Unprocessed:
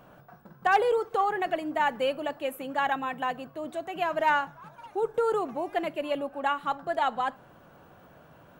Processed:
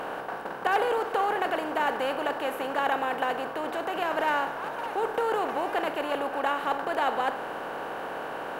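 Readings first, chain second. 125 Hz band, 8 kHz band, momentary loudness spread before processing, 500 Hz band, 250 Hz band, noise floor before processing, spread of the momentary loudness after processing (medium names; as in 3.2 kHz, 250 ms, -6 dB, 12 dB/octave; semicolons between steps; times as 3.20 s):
0.0 dB, no reading, 10 LU, 0.0 dB, +0.5 dB, -55 dBFS, 8 LU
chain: spectral levelling over time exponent 0.4; trim -5.5 dB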